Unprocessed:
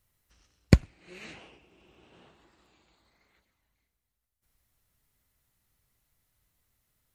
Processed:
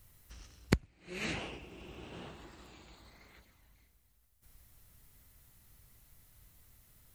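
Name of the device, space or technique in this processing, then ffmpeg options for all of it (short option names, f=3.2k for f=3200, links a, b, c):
ASMR close-microphone chain: -af "lowshelf=f=190:g=6.5,acompressor=threshold=-39dB:ratio=5,highshelf=f=9.4k:g=5,volume=9dB"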